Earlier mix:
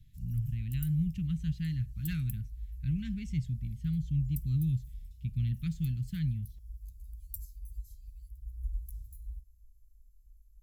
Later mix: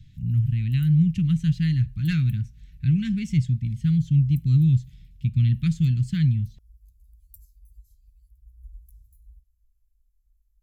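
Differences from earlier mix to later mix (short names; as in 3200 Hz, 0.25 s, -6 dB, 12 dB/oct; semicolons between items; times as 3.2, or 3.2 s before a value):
speech +11.5 dB; background -8.0 dB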